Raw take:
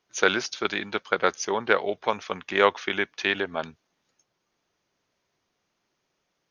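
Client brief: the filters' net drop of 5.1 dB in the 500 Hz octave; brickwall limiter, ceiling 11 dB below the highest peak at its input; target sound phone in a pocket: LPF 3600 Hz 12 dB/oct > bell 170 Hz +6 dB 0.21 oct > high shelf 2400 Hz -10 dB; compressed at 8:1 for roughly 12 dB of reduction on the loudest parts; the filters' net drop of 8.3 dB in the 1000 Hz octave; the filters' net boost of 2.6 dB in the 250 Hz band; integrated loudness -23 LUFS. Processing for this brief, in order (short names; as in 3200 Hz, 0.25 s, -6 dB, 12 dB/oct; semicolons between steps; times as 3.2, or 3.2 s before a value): bell 250 Hz +6.5 dB; bell 500 Hz -6.5 dB; bell 1000 Hz -7.5 dB; compressor 8:1, threshold -30 dBFS; limiter -23 dBFS; LPF 3600 Hz 12 dB/oct; bell 170 Hz +6 dB 0.21 oct; high shelf 2400 Hz -10 dB; gain +17.5 dB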